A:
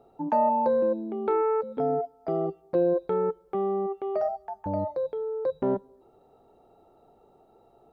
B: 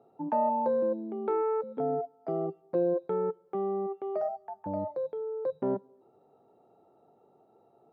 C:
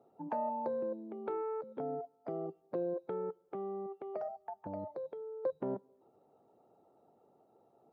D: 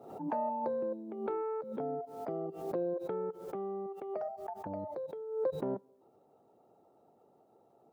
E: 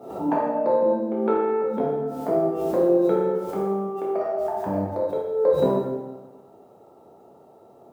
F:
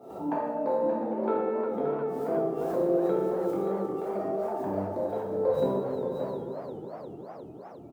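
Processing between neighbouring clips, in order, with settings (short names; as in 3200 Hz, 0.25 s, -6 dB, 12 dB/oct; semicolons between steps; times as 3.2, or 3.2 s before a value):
HPF 110 Hz 24 dB/oct; high shelf 2800 Hz -10.5 dB; gain -3.5 dB
harmonic-percussive split harmonic -9 dB
backwards sustainer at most 70 dB/s; gain +1.5 dB
plate-style reverb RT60 1.2 s, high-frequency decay 0.85×, DRR -5 dB; gain +8.5 dB
echo 0.577 s -7 dB; warbling echo 0.358 s, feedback 75%, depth 142 cents, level -10.5 dB; gain -7 dB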